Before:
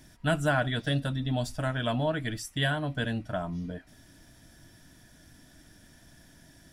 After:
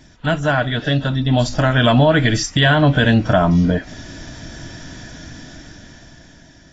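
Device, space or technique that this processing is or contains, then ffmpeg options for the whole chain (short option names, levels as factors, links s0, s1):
low-bitrate web radio: -af "dynaudnorm=f=360:g=9:m=5.01,alimiter=limit=0.266:level=0:latency=1:release=107,volume=2.51" -ar 16000 -c:a aac -b:a 24k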